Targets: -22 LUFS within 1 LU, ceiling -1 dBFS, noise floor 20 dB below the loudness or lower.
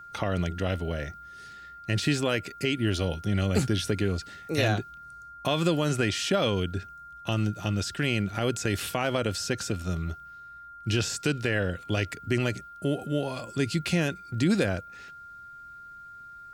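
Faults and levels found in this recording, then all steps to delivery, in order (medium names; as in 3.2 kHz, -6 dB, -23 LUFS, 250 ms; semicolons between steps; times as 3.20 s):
steady tone 1.4 kHz; tone level -43 dBFS; loudness -28.5 LUFS; peak level -11.0 dBFS; loudness target -22.0 LUFS
-> band-stop 1.4 kHz, Q 30; trim +6.5 dB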